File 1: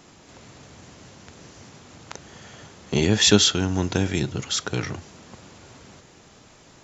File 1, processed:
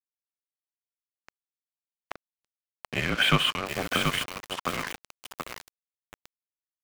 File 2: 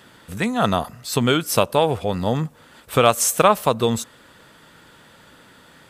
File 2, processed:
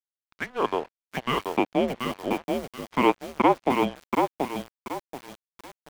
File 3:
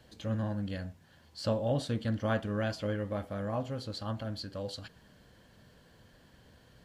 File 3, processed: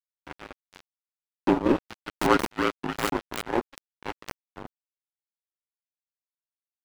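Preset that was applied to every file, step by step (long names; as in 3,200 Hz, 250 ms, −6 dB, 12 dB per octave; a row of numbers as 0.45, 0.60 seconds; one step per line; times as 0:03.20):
single-sideband voice off tune −260 Hz 510–3,000 Hz
dead-zone distortion −36.5 dBFS
feedback echo at a low word length 731 ms, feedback 35%, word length 6 bits, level −3.5 dB
loudness normalisation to −27 LKFS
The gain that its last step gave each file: +5.0, −3.0, +17.5 decibels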